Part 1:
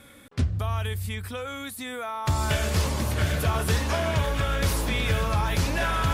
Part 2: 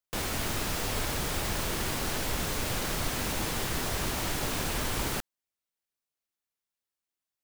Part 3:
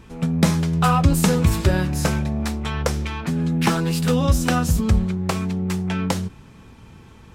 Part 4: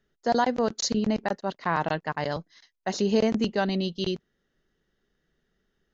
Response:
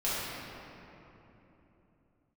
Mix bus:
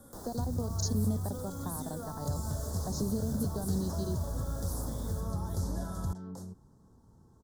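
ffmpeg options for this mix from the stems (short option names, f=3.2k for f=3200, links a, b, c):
-filter_complex "[0:a]acompressor=threshold=-29dB:ratio=6,volume=-3dB,asplit=2[a][b];[b]volume=-15.5dB[c];[1:a]volume=-3dB,asplit=2[d][e];[e]volume=-23.5dB[f];[2:a]adelay=250,volume=-15dB[g];[3:a]acompressor=threshold=-25dB:ratio=6,volume=-2dB[h];[d][g]amix=inputs=2:normalize=0,acrossover=split=220|4200[i][j][k];[i]acompressor=threshold=-43dB:ratio=4[l];[j]acompressor=threshold=-37dB:ratio=4[m];[k]acompressor=threshold=-47dB:ratio=4[n];[l][m][n]amix=inputs=3:normalize=0,alimiter=level_in=10dB:limit=-24dB:level=0:latency=1:release=31,volume=-10dB,volume=0dB[o];[4:a]atrim=start_sample=2205[p];[c][p]afir=irnorm=-1:irlink=0[q];[f]aecho=0:1:443:1[r];[a][h][o][q][r]amix=inputs=5:normalize=0,acrossover=split=270|3000[s][t][u];[t]acompressor=threshold=-43dB:ratio=2.5[v];[s][v][u]amix=inputs=3:normalize=0,asuperstop=centerf=2500:order=4:qfactor=0.55"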